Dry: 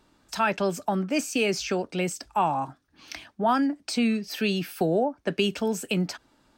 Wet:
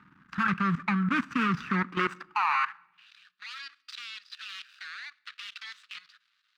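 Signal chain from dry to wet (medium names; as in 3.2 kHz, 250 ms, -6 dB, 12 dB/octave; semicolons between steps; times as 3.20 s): median filter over 41 samples; FFT filter 130 Hz 0 dB, 620 Hz -28 dB, 1.2 kHz +15 dB, 14 kHz -21 dB; in parallel at 0 dB: peak limiter -24 dBFS, peak gain reduction 8.5 dB; on the sum: high-pass sweep 190 Hz -> 3.9 kHz, 1.76–3.12 s; level held to a coarse grid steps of 16 dB; on a send at -24 dB: reverberation RT60 0.95 s, pre-delay 24 ms; on the sum: trim +6.5 dB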